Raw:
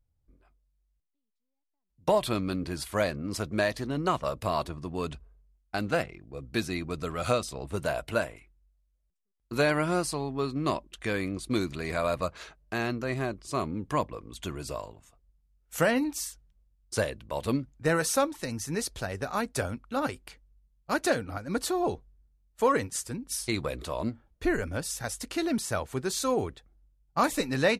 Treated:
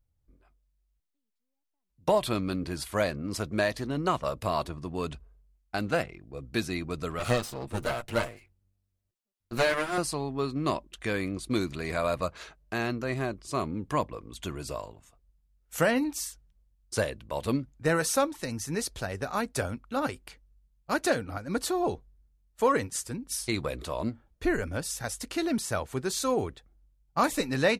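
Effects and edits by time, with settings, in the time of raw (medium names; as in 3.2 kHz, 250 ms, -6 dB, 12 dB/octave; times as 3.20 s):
7.19–9.98 s: comb filter that takes the minimum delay 8.5 ms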